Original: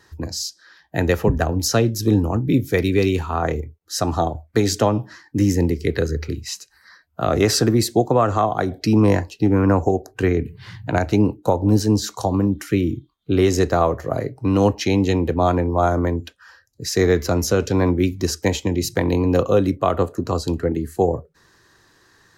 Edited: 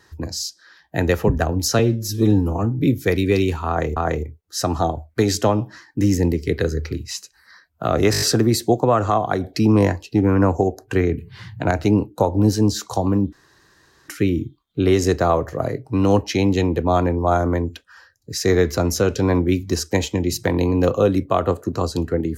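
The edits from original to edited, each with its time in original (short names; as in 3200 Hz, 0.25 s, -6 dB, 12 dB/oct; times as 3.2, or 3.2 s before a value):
1.79–2.46 stretch 1.5×
3.34–3.63 loop, 2 plays
7.49 stutter 0.02 s, 6 plays
12.6 insert room tone 0.76 s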